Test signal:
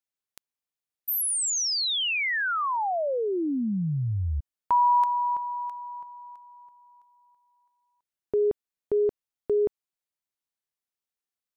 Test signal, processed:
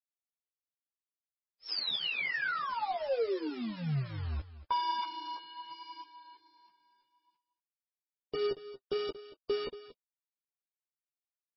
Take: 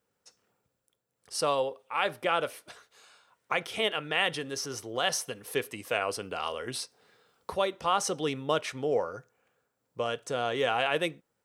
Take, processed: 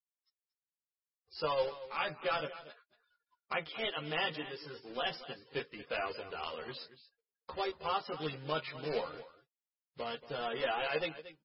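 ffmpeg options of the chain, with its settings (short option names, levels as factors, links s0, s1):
-filter_complex "[0:a]afftfilt=real='re*gte(hypot(re,im),0.00501)':imag='im*gte(hypot(re,im),0.00501)':win_size=1024:overlap=0.75,aresample=11025,acrusher=bits=2:mode=log:mix=0:aa=0.000001,aresample=44100,flanger=delay=1.9:depth=5.7:regen=44:speed=0.64:shape=sinusoidal,asplit=2[s0][s1];[s1]adelay=13,volume=0.708[s2];[s0][s2]amix=inputs=2:normalize=0,asplit=2[s3][s4];[s4]aecho=0:1:231:0.178[s5];[s3][s5]amix=inputs=2:normalize=0,volume=0.562" -ar 22050 -c:a libmp3lame -b:a 16k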